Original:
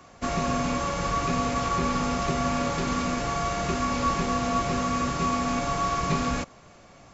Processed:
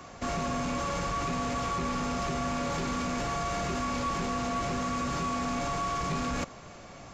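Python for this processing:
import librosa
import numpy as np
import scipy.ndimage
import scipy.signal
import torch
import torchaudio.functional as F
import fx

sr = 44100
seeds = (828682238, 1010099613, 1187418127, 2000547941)

p1 = fx.over_compress(x, sr, threshold_db=-32.0, ratio=-0.5)
p2 = x + (p1 * librosa.db_to_amplitude(-3.0))
p3 = 10.0 ** (-20.5 / 20.0) * np.tanh(p2 / 10.0 ** (-20.5 / 20.0))
y = p3 * librosa.db_to_amplitude(-4.5)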